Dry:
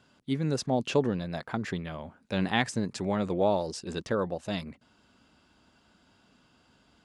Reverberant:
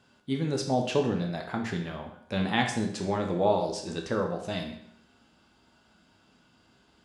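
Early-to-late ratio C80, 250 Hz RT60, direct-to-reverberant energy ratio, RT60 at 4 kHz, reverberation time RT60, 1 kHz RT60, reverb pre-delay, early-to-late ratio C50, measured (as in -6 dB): 10.0 dB, 0.70 s, 2.0 dB, 0.65 s, 0.70 s, 0.70 s, 10 ms, 6.5 dB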